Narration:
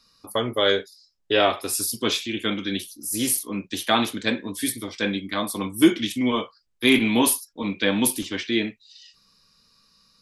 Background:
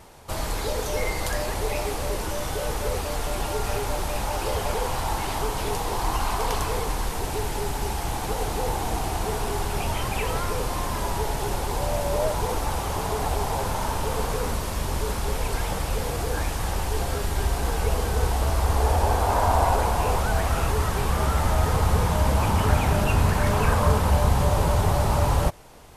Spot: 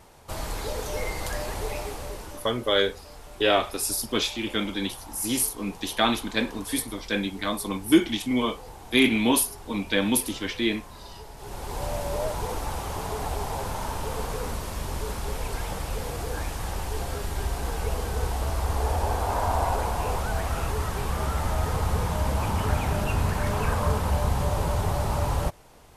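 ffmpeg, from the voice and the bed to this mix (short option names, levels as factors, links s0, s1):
-filter_complex "[0:a]adelay=2100,volume=0.794[s0];[1:a]volume=2.66,afade=t=out:st=1.63:d=0.92:silence=0.223872,afade=t=in:st=11.36:d=0.48:silence=0.237137[s1];[s0][s1]amix=inputs=2:normalize=0"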